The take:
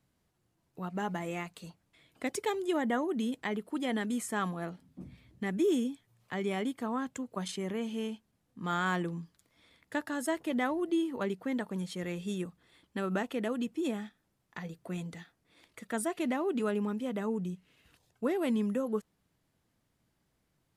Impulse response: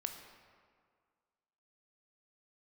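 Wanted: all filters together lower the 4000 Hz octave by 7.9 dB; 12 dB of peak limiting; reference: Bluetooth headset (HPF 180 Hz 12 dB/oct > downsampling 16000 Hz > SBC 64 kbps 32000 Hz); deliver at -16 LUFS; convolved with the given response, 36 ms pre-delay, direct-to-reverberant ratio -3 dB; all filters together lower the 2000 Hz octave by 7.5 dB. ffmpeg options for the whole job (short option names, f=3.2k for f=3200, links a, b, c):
-filter_complex "[0:a]equalizer=f=2k:t=o:g=-8.5,equalizer=f=4k:t=o:g=-7,alimiter=level_in=8.5dB:limit=-24dB:level=0:latency=1,volume=-8.5dB,asplit=2[a][b];[1:a]atrim=start_sample=2205,adelay=36[c];[b][c]afir=irnorm=-1:irlink=0,volume=4dB[d];[a][d]amix=inputs=2:normalize=0,highpass=180,aresample=16000,aresample=44100,volume=21dB" -ar 32000 -c:a sbc -b:a 64k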